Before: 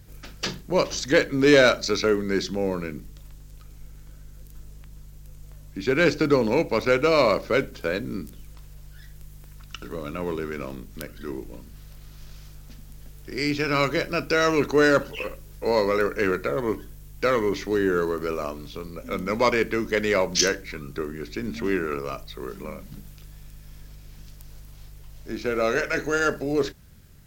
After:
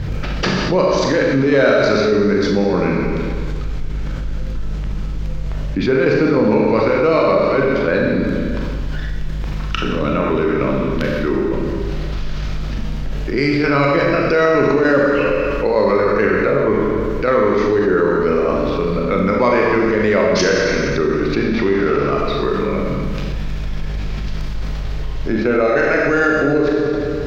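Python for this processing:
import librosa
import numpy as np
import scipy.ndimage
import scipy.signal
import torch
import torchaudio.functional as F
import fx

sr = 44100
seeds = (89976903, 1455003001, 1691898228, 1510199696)

y = fx.cvsd(x, sr, bps=32000, at=(21.34, 22.08))
y = fx.dynamic_eq(y, sr, hz=3000.0, q=1.7, threshold_db=-43.0, ratio=4.0, max_db=-6)
y = fx.chopper(y, sr, hz=3.3, depth_pct=60, duty_pct=70)
y = fx.air_absorb(y, sr, metres=220.0)
y = fx.rev_schroeder(y, sr, rt60_s=1.4, comb_ms=29, drr_db=-0.5)
y = fx.env_flatten(y, sr, amount_pct=70)
y = F.gain(torch.from_numpy(y), 1.0).numpy()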